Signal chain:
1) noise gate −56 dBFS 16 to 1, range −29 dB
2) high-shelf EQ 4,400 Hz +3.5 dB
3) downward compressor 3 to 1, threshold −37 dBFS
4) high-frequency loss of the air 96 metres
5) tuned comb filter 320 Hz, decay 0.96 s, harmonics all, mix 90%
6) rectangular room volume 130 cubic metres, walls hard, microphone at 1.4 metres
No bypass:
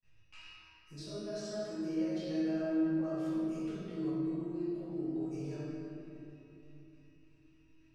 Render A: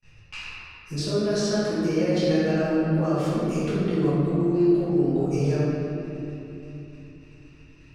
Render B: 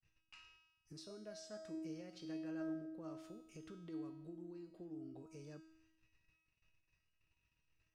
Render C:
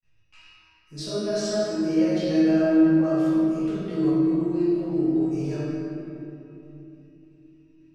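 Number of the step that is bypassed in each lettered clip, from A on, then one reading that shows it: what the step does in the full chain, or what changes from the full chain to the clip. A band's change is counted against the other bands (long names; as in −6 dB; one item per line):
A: 5, 250 Hz band −5.5 dB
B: 6, echo-to-direct ratio 10.5 dB to none audible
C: 3, average gain reduction 11.5 dB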